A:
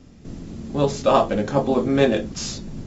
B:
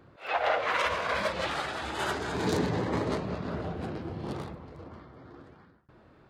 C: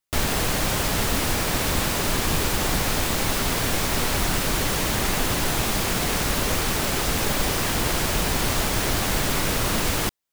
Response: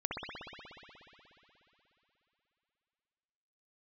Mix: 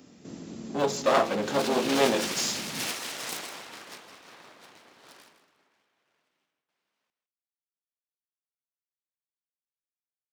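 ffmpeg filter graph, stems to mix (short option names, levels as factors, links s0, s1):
-filter_complex "[0:a]acompressor=mode=upward:threshold=0.00112:ratio=2.5,aeval=exprs='clip(val(0),-1,0.0531)':c=same,volume=0.794,asplit=2[s0][s1];[s1]volume=0.1[s2];[1:a]tiltshelf=f=790:g=-8.5,aeval=exprs='abs(val(0))':c=same,adelay=800,volume=0.794,afade=t=in:st=1.48:d=0.49:silence=0.223872,afade=t=out:st=3.03:d=0.73:silence=0.375837,afade=t=out:st=5.07:d=0.65:silence=0.316228,asplit=3[s3][s4][s5];[s4]volume=0.0841[s6];[s5]volume=0.299[s7];[3:a]atrim=start_sample=2205[s8];[s6][s8]afir=irnorm=-1:irlink=0[s9];[s2][s7]amix=inputs=2:normalize=0,aecho=0:1:161:1[s10];[s0][s3][s9][s10]amix=inputs=4:normalize=0,highpass=220,highshelf=f=5400:g=5"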